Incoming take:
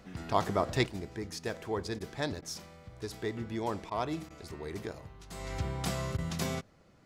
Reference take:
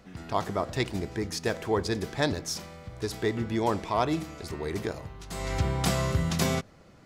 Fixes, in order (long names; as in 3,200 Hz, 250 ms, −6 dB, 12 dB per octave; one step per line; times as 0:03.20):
repair the gap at 0:01.99/0:02.41/0:03.90/0:04.29/0:06.17, 12 ms
level 0 dB, from 0:00.86 +7.5 dB